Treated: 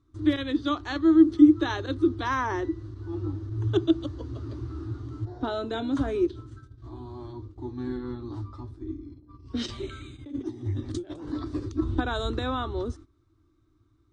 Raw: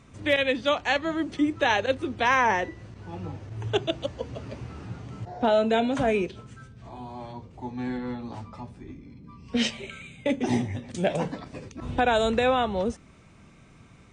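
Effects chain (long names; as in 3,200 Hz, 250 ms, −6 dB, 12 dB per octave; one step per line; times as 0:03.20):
0:09.66–0:11.84: compressor whose output falls as the input rises −35 dBFS, ratio −1
drawn EQ curve 110 Hz 0 dB, 190 Hz −27 dB, 320 Hz +8 dB, 480 Hz −18 dB, 820 Hz −17 dB, 1,200 Hz −6 dB, 2,500 Hz −24 dB, 3,800 Hz −8 dB, 7,400 Hz −16 dB
noise gate −49 dBFS, range −15 dB
level +6 dB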